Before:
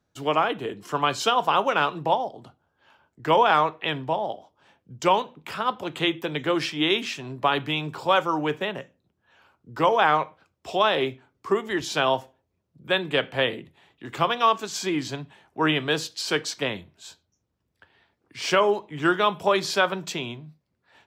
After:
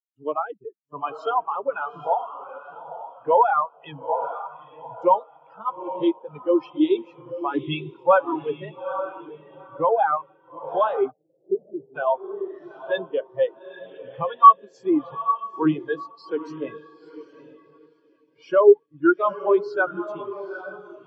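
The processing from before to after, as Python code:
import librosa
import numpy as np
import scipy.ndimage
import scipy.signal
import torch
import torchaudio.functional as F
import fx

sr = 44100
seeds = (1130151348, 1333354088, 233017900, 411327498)

y = fx.spec_quant(x, sr, step_db=15)
y = fx.dereverb_blind(y, sr, rt60_s=1.7)
y = fx.leveller(y, sr, passes=1, at=(7.54, 8.19))
y = fx.echo_diffused(y, sr, ms=854, feedback_pct=55, wet_db=-4.0)
y = fx.leveller(y, sr, passes=2)
y = fx.gaussian_blur(y, sr, sigma=16.0, at=(11.1, 11.94), fade=0.02)
y = fx.spectral_expand(y, sr, expansion=2.5)
y = F.gain(torch.from_numpy(y), 5.0).numpy()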